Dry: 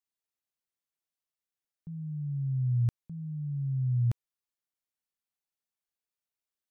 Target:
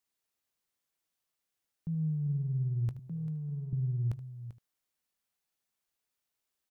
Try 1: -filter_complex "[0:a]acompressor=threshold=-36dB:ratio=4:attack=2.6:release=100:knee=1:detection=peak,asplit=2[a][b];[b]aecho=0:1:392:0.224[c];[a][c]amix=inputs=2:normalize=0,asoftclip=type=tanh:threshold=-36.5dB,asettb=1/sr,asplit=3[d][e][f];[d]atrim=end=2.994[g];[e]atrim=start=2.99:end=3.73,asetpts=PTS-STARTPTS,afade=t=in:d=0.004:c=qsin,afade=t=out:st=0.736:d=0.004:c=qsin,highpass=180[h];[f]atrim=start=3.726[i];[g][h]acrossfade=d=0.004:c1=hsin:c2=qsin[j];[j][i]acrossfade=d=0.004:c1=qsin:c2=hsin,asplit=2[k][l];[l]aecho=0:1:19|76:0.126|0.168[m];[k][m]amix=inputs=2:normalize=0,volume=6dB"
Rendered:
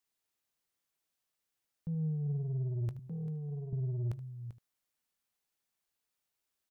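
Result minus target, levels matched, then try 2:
soft clip: distortion +14 dB
-filter_complex "[0:a]acompressor=threshold=-36dB:ratio=4:attack=2.6:release=100:knee=1:detection=peak,asplit=2[a][b];[b]aecho=0:1:392:0.224[c];[a][c]amix=inputs=2:normalize=0,asoftclip=type=tanh:threshold=-27.5dB,asettb=1/sr,asplit=3[d][e][f];[d]atrim=end=2.994[g];[e]atrim=start=2.99:end=3.73,asetpts=PTS-STARTPTS,afade=t=in:d=0.004:c=qsin,afade=t=out:st=0.736:d=0.004:c=qsin,highpass=180[h];[f]atrim=start=3.726[i];[g][h]acrossfade=d=0.004:c1=hsin:c2=qsin[j];[j][i]acrossfade=d=0.004:c1=qsin:c2=hsin,asplit=2[k][l];[l]aecho=0:1:19|76:0.126|0.168[m];[k][m]amix=inputs=2:normalize=0,volume=6dB"

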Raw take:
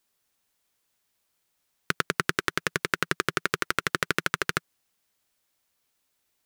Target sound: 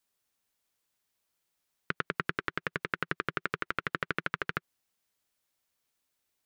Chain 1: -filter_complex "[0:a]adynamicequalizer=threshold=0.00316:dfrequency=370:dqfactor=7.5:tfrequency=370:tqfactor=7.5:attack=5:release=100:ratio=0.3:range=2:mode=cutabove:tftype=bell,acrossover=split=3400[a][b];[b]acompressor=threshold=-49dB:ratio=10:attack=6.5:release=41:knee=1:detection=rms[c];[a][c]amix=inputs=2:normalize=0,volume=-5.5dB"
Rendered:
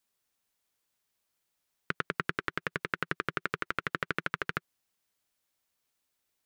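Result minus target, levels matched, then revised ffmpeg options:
compressor: peak gain reduction -6 dB
-filter_complex "[0:a]adynamicequalizer=threshold=0.00316:dfrequency=370:dqfactor=7.5:tfrequency=370:tqfactor=7.5:attack=5:release=100:ratio=0.3:range=2:mode=cutabove:tftype=bell,acrossover=split=3400[a][b];[b]acompressor=threshold=-55.5dB:ratio=10:attack=6.5:release=41:knee=1:detection=rms[c];[a][c]amix=inputs=2:normalize=0,volume=-5.5dB"

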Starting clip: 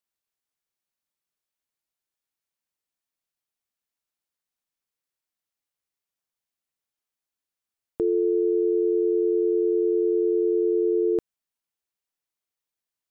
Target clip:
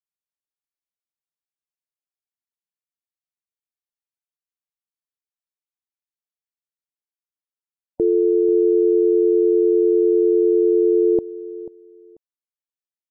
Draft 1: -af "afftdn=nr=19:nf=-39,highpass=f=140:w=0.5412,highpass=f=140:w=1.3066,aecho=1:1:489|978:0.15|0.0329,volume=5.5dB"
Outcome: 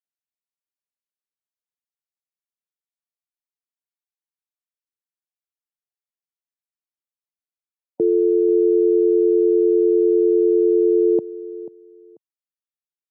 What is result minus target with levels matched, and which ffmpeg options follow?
125 Hz band -4.0 dB
-af "afftdn=nr=19:nf=-39,aecho=1:1:489|978:0.15|0.0329,volume=5.5dB"

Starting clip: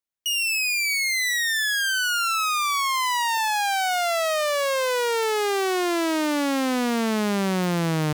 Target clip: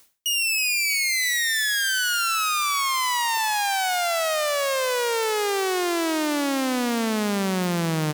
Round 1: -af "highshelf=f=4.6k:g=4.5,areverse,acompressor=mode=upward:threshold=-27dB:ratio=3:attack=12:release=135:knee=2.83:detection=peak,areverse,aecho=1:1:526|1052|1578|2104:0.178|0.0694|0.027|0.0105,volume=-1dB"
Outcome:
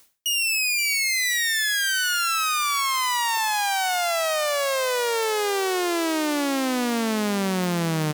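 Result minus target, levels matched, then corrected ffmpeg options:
echo 0.205 s late
-af "highshelf=f=4.6k:g=4.5,areverse,acompressor=mode=upward:threshold=-27dB:ratio=3:attack=12:release=135:knee=2.83:detection=peak,areverse,aecho=1:1:321|642|963|1284:0.178|0.0694|0.027|0.0105,volume=-1dB"

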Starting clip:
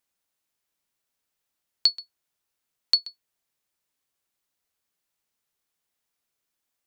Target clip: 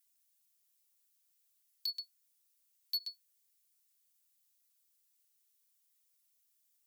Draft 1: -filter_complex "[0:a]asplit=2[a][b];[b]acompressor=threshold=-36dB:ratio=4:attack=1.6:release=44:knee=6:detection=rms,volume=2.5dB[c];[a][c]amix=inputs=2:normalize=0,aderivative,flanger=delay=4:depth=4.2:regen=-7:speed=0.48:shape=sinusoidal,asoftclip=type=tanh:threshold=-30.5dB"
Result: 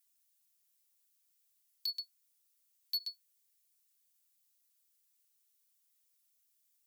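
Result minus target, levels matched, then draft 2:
compressor: peak gain reduction -5.5 dB
-filter_complex "[0:a]asplit=2[a][b];[b]acompressor=threshold=-43.5dB:ratio=4:attack=1.6:release=44:knee=6:detection=rms,volume=2.5dB[c];[a][c]amix=inputs=2:normalize=0,aderivative,flanger=delay=4:depth=4.2:regen=-7:speed=0.48:shape=sinusoidal,asoftclip=type=tanh:threshold=-30.5dB"

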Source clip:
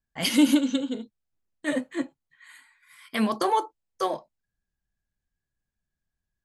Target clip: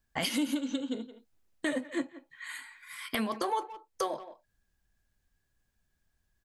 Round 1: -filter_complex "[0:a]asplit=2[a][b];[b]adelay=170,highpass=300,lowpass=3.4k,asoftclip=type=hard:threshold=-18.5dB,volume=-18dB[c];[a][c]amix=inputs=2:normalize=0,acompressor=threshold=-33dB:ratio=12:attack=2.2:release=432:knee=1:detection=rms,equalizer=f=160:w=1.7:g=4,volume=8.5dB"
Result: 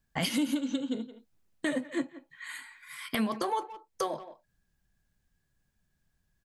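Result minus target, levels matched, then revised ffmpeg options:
125 Hz band +5.0 dB
-filter_complex "[0:a]asplit=2[a][b];[b]adelay=170,highpass=300,lowpass=3.4k,asoftclip=type=hard:threshold=-18.5dB,volume=-18dB[c];[a][c]amix=inputs=2:normalize=0,acompressor=threshold=-33dB:ratio=12:attack=2.2:release=432:knee=1:detection=rms,equalizer=f=160:w=1.7:g=-4,volume=8.5dB"

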